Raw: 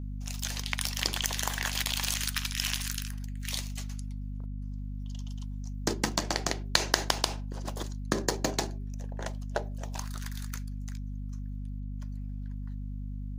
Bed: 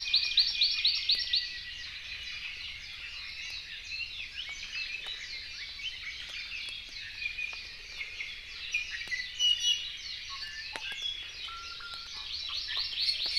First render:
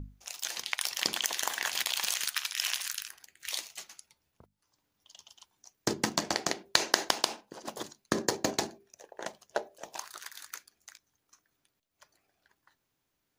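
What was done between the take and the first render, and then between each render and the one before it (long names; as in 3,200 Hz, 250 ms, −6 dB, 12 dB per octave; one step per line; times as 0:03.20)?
mains-hum notches 50/100/150/200/250 Hz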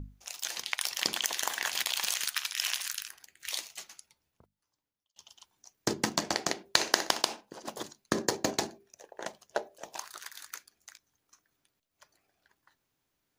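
0:03.96–0:05.16: fade out
0:06.74–0:07.22: flutter between parallel walls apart 10.6 metres, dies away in 0.28 s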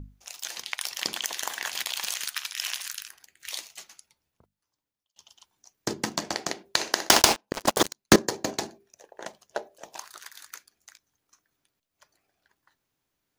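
0:07.09–0:08.16: leveller curve on the samples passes 5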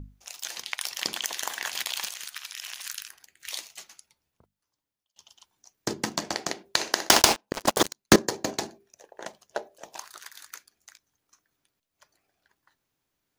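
0:02.07–0:02.86: downward compressor, threshold −33 dBFS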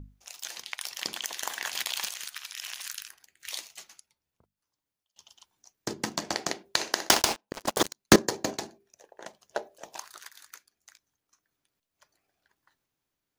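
sample-and-hold tremolo 3.5 Hz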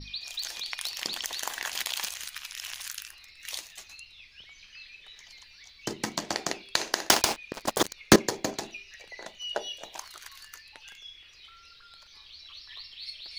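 mix in bed −11 dB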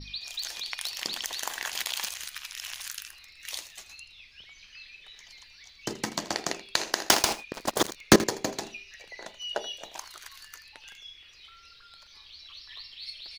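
single-tap delay 81 ms −16 dB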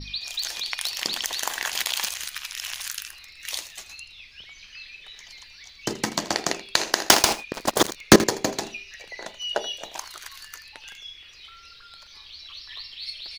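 level +5.5 dB
brickwall limiter −1 dBFS, peak gain reduction 1 dB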